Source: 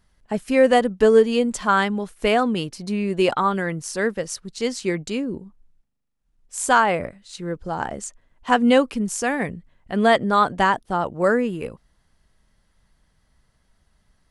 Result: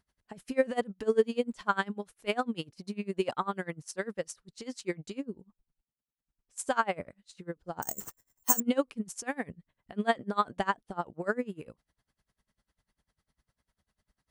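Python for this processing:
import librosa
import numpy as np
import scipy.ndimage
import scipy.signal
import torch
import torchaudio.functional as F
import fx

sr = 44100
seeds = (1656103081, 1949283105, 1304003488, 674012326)

y = fx.highpass(x, sr, hz=68.0, slope=6)
y = fx.resample_bad(y, sr, factor=6, down='none', up='zero_stuff', at=(7.82, 8.6))
y = y * 10.0 ** (-26 * (0.5 - 0.5 * np.cos(2.0 * np.pi * 10.0 * np.arange(len(y)) / sr)) / 20.0)
y = y * 10.0 ** (-6.0 / 20.0)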